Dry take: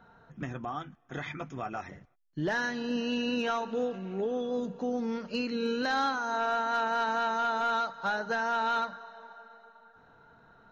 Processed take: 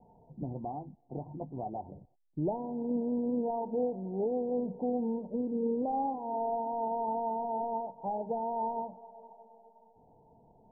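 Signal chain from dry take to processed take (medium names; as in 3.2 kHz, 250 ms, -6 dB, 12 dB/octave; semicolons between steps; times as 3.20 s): steep low-pass 920 Hz 96 dB/octave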